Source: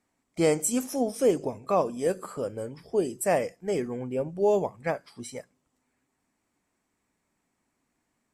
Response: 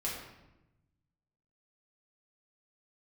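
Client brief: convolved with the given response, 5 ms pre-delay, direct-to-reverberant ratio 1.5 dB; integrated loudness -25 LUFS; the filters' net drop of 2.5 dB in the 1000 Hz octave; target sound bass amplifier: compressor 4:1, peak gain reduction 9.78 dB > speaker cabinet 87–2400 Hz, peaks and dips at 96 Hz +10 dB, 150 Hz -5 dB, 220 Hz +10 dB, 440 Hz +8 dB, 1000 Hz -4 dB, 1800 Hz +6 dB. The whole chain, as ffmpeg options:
-filter_complex "[0:a]equalizer=f=1k:t=o:g=-3,asplit=2[a][b];[1:a]atrim=start_sample=2205,adelay=5[c];[b][c]afir=irnorm=-1:irlink=0,volume=-5dB[d];[a][d]amix=inputs=2:normalize=0,acompressor=threshold=-25dB:ratio=4,highpass=f=87:w=0.5412,highpass=f=87:w=1.3066,equalizer=f=96:t=q:w=4:g=10,equalizer=f=150:t=q:w=4:g=-5,equalizer=f=220:t=q:w=4:g=10,equalizer=f=440:t=q:w=4:g=8,equalizer=f=1k:t=q:w=4:g=-4,equalizer=f=1.8k:t=q:w=4:g=6,lowpass=f=2.4k:w=0.5412,lowpass=f=2.4k:w=1.3066,volume=1dB"

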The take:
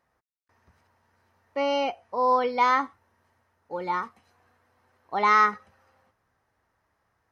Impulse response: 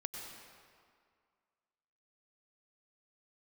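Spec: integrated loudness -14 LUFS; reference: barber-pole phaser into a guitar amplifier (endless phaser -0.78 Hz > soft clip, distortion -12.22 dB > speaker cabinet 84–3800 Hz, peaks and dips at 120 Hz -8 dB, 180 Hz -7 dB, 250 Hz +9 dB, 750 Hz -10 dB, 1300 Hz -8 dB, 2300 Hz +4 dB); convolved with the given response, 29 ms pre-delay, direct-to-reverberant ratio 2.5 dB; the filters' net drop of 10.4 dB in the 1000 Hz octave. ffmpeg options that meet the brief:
-filter_complex "[0:a]equalizer=f=1k:t=o:g=-6,asplit=2[a][b];[1:a]atrim=start_sample=2205,adelay=29[c];[b][c]afir=irnorm=-1:irlink=0,volume=-2dB[d];[a][d]amix=inputs=2:normalize=0,asplit=2[e][f];[f]afreqshift=-0.78[g];[e][g]amix=inputs=2:normalize=1,asoftclip=threshold=-21dB,highpass=84,equalizer=f=120:t=q:w=4:g=-8,equalizer=f=180:t=q:w=4:g=-7,equalizer=f=250:t=q:w=4:g=9,equalizer=f=750:t=q:w=4:g=-10,equalizer=f=1.3k:t=q:w=4:g=-8,equalizer=f=2.3k:t=q:w=4:g=4,lowpass=f=3.8k:w=0.5412,lowpass=f=3.8k:w=1.3066,volume=18.5dB"

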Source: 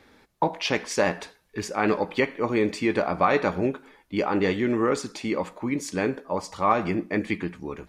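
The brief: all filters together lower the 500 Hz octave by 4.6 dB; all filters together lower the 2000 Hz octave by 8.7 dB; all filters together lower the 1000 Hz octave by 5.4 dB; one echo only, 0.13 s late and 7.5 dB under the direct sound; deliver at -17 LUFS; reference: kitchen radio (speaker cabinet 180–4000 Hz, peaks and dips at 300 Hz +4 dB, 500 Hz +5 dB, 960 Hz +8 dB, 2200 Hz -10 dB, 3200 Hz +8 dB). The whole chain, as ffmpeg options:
-af "highpass=180,equalizer=f=300:t=q:w=4:g=4,equalizer=f=500:t=q:w=4:g=5,equalizer=f=960:t=q:w=4:g=8,equalizer=f=2.2k:t=q:w=4:g=-10,equalizer=f=3.2k:t=q:w=4:g=8,lowpass=f=4k:w=0.5412,lowpass=f=4k:w=1.3066,equalizer=f=500:t=o:g=-7.5,equalizer=f=1k:t=o:g=-8,equalizer=f=2k:t=o:g=-4.5,aecho=1:1:130:0.422,volume=12dB"

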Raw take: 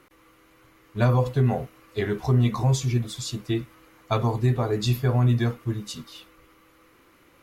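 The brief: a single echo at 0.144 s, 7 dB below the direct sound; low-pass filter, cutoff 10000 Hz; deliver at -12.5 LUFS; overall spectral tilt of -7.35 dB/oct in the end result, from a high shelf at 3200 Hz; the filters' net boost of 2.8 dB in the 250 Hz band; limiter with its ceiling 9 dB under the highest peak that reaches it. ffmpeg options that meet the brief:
-af "lowpass=10k,equalizer=f=250:t=o:g=3.5,highshelf=f=3.2k:g=-7.5,alimiter=limit=-19dB:level=0:latency=1,aecho=1:1:144:0.447,volume=16dB"

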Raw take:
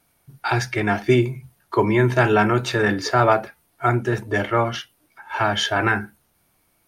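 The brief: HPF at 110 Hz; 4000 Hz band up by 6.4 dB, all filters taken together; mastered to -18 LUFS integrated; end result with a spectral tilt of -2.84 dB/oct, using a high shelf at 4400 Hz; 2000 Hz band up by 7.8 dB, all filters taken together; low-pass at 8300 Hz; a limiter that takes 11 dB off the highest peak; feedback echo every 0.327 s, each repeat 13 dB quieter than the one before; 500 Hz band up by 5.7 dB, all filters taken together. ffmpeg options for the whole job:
-af "highpass=110,lowpass=8.3k,equalizer=f=500:t=o:g=7.5,equalizer=f=2k:t=o:g=8.5,equalizer=f=4k:t=o:g=3,highshelf=f=4.4k:g=4,alimiter=limit=-10dB:level=0:latency=1,aecho=1:1:327|654|981:0.224|0.0493|0.0108,volume=2.5dB"

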